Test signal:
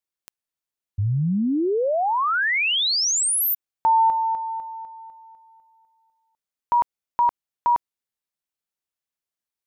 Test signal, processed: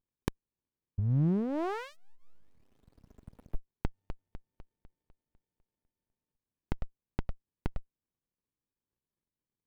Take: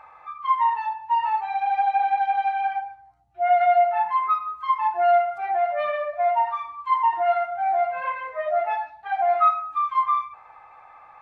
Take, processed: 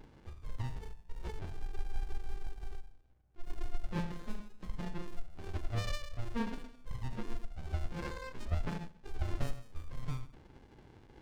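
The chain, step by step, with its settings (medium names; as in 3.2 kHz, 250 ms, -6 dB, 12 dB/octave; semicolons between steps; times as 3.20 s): fifteen-band graphic EQ 100 Hz -8 dB, 250 Hz -8 dB, 1 kHz -9 dB; sliding maximum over 65 samples; trim +1 dB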